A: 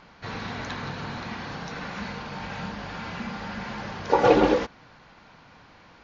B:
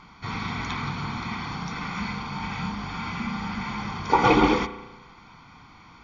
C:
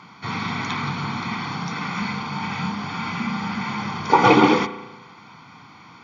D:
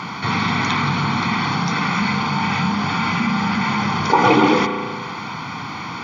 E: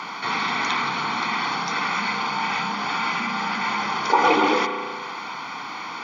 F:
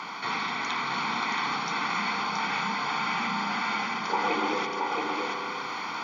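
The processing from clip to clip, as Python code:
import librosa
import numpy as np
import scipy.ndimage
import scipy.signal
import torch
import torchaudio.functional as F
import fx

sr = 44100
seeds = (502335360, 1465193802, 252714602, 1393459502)

y1 = fx.dynamic_eq(x, sr, hz=2400.0, q=1.1, threshold_db=-40.0, ratio=4.0, max_db=4)
y1 = y1 + 0.74 * np.pad(y1, (int(0.9 * sr / 1000.0), 0))[:len(y1)]
y1 = fx.rev_spring(y1, sr, rt60_s=1.1, pass_ms=(34,), chirp_ms=75, drr_db=12.5)
y2 = scipy.signal.sosfilt(scipy.signal.butter(4, 110.0, 'highpass', fs=sr, output='sos'), y1)
y2 = F.gain(torch.from_numpy(y2), 4.5).numpy()
y3 = fx.env_flatten(y2, sr, amount_pct=50)
y3 = F.gain(torch.from_numpy(y3), -1.0).numpy()
y4 = scipy.signal.sosfilt(scipy.signal.butter(2, 380.0, 'highpass', fs=sr, output='sos'), y3)
y4 = F.gain(torch.from_numpy(y4), -2.5).numpy()
y5 = fx.rider(y4, sr, range_db=4, speed_s=0.5)
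y5 = y5 + 10.0 ** (-3.0 / 20.0) * np.pad(y5, (int(675 * sr / 1000.0), 0))[:len(y5)]
y5 = F.gain(torch.from_numpy(y5), -6.5).numpy()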